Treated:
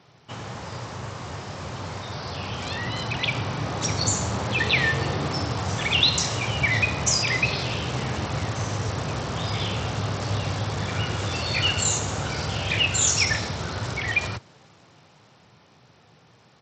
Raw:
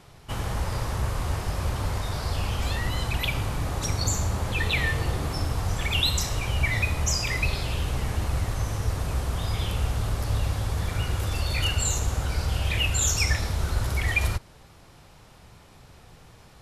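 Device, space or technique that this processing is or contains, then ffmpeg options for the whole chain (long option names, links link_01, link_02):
Bluetooth headset: -af "highpass=frequency=110:width=0.5412,highpass=frequency=110:width=1.3066,dynaudnorm=framelen=340:gausssize=17:maxgain=8dB,aresample=16000,aresample=44100,volume=-2.5dB" -ar 32000 -c:a sbc -b:a 64k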